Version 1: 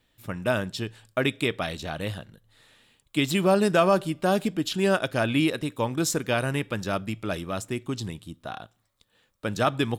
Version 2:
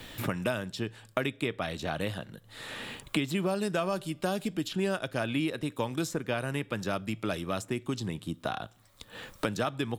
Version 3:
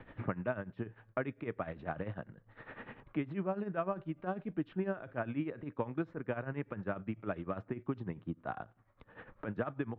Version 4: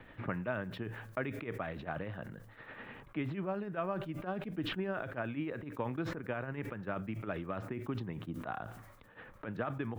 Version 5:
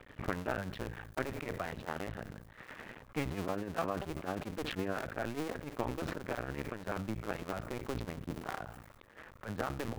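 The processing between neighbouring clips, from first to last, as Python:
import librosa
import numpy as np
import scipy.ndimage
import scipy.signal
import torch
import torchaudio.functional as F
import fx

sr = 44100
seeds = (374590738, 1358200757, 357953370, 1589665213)

y1 = fx.band_squash(x, sr, depth_pct=100)
y1 = F.gain(torch.from_numpy(y1), -6.5).numpy()
y2 = scipy.signal.sosfilt(scipy.signal.butter(4, 1900.0, 'lowpass', fs=sr, output='sos'), y1)
y2 = y2 * (1.0 - 0.78 / 2.0 + 0.78 / 2.0 * np.cos(2.0 * np.pi * 10.0 * (np.arange(len(y2)) / sr)))
y2 = F.gain(torch.from_numpy(y2), -2.5).numpy()
y3 = fx.high_shelf(y2, sr, hz=2600.0, db=10.0)
y3 = fx.sustainer(y3, sr, db_per_s=46.0)
y3 = F.gain(torch.from_numpy(y3), -3.0).numpy()
y4 = fx.cycle_switch(y3, sr, every=2, mode='muted')
y4 = F.gain(torch.from_numpy(y4), 3.0).numpy()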